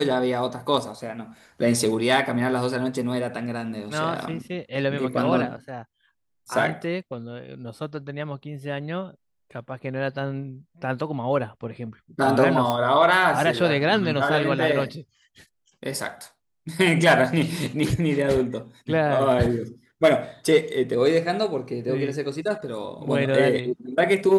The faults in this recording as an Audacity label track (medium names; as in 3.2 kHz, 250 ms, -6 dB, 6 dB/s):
12.700000	12.700000	pop -11 dBFS